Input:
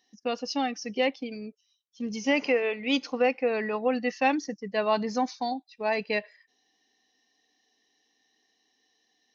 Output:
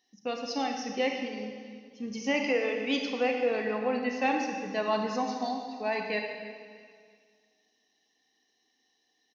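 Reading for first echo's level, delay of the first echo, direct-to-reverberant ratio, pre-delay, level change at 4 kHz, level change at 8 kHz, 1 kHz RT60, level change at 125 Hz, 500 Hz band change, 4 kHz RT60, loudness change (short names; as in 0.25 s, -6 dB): -18.5 dB, 0.326 s, 2.0 dB, 26 ms, -2.0 dB, n/a, 1.9 s, n/a, -2.5 dB, 1.9 s, -2.5 dB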